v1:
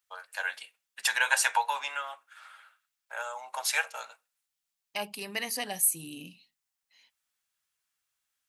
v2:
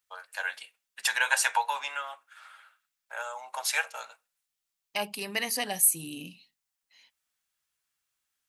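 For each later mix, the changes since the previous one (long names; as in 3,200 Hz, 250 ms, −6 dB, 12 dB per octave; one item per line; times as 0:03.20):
second voice +3.0 dB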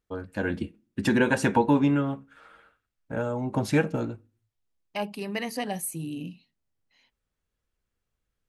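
first voice: remove inverse Chebyshev high-pass filter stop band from 350 Hz, stop band 40 dB
master: add spectral tilt −3.5 dB per octave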